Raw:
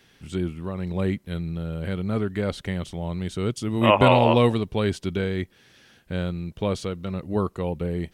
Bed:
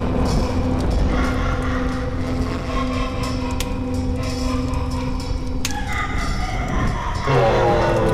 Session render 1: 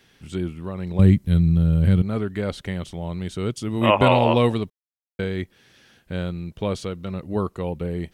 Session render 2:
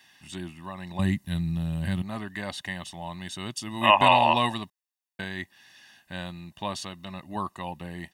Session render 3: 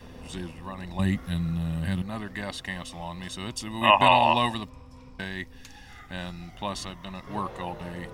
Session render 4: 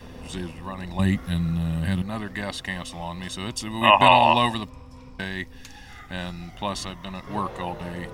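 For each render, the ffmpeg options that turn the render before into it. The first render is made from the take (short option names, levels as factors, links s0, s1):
-filter_complex "[0:a]asettb=1/sr,asplit=3[s0][s1][s2];[s0]atrim=end=0.994[s3];[s1]atrim=start=0.99:end=2.02,asetpts=PTS-STARTPTS,afade=t=in:d=0.004:c=qsin,afade=t=out:st=1.026:d=0.004:c=qsin,bass=f=250:g=15,treble=f=4000:g=6[s4];[s2]atrim=start=2.016[s5];[s3][s4]acrossfade=d=0.004:c1=hsin:c2=qsin[s6];[s6][s5]acrossfade=d=0.004:c1=qsin:c2=hsin,asplit=3[s7][s8][s9];[s7]atrim=end=4.7,asetpts=PTS-STARTPTS,afade=t=out:st=4.696:d=0.004:c=hsin[s10];[s8]atrim=start=4.7:end=5.19,asetpts=PTS-STARTPTS,volume=0[s11];[s9]atrim=start=5.19,asetpts=PTS-STARTPTS,afade=t=in:d=0.004:c=hsin[s12];[s10][s11][s12]concat=n=3:v=0:a=1"
-af "highpass=f=790:p=1,aecho=1:1:1.1:0.86"
-filter_complex "[1:a]volume=0.0562[s0];[0:a][s0]amix=inputs=2:normalize=0"
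-af "volume=1.5,alimiter=limit=0.794:level=0:latency=1"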